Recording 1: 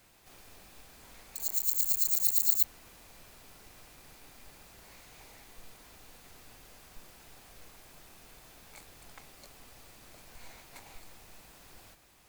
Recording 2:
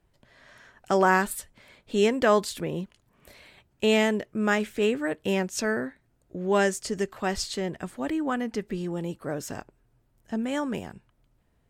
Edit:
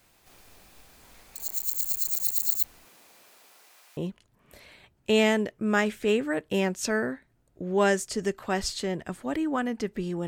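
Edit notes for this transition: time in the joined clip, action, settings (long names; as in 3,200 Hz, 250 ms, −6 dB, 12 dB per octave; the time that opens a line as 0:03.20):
recording 1
0:02.84–0:03.97: high-pass filter 170 Hz → 930 Hz
0:03.97: continue with recording 2 from 0:02.71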